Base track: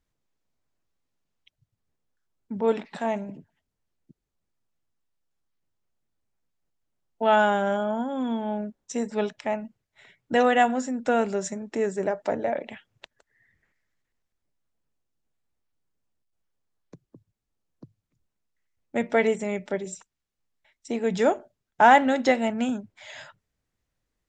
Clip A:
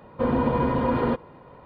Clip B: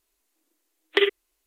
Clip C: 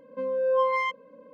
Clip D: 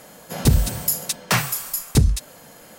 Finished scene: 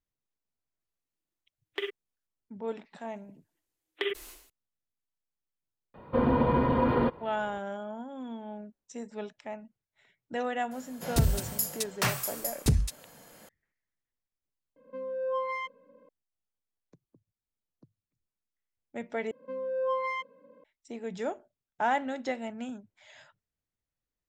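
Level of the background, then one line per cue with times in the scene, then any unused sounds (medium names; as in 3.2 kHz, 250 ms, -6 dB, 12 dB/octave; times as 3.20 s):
base track -12 dB
0.81 s: add B -14 dB + companding laws mixed up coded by A
3.04 s: add B -12 dB + decay stretcher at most 87 dB/s
5.94 s: add A -2 dB
10.71 s: add D -8.5 dB
14.76 s: add C -8 dB
19.31 s: replace with C -6.5 dB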